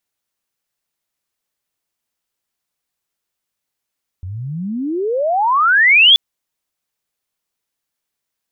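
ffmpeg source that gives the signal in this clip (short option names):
-f lavfi -i "aevalsrc='pow(10,(-24.5+20*t/1.93)/20)*sin(2*PI*86*1.93/log(3500/86)*(exp(log(3500/86)*t/1.93)-1))':d=1.93:s=44100"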